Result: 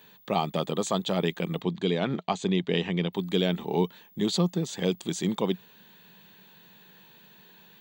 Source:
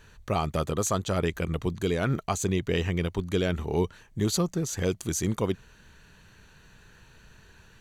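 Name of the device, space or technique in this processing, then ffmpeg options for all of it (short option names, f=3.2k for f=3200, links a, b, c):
old television with a line whistle: -filter_complex "[0:a]highpass=f=170:w=0.5412,highpass=f=170:w=1.3066,equalizer=f=180:t=q:w=4:g=6,equalizer=f=830:t=q:w=4:g=5,equalizer=f=1.4k:t=q:w=4:g=-7,equalizer=f=3.5k:t=q:w=4:g=9,equalizer=f=6.1k:t=q:w=4:g=-9,lowpass=f=7.8k:w=0.5412,lowpass=f=7.8k:w=1.3066,aeval=exprs='val(0)+0.00178*sin(2*PI*15625*n/s)':c=same,asettb=1/sr,asplit=3[a][b][c];[a]atrim=end=1.624[d];[b]atrim=start=1.62:end=3.13,asetpts=PTS-STARTPTS,afade=t=in:d=0.004:c=qsin,afade=t=out:st=1.506:d=0.004:c=qsin,lowpass=5.6k[e];[c]atrim=start=3.126[f];[d][e]acrossfade=d=0.004:c1=hsin:c2=qsin[g];[g][f]acrossfade=d=0.004:c1=qsin:c2=hsin"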